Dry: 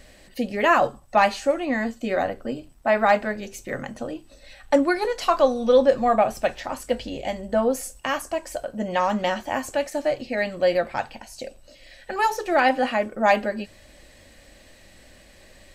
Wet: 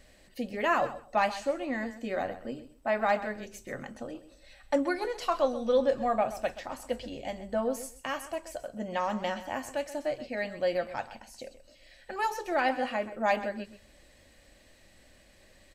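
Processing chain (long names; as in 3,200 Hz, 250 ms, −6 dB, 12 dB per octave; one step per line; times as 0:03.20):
repeating echo 129 ms, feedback 18%, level −14 dB
level −8.5 dB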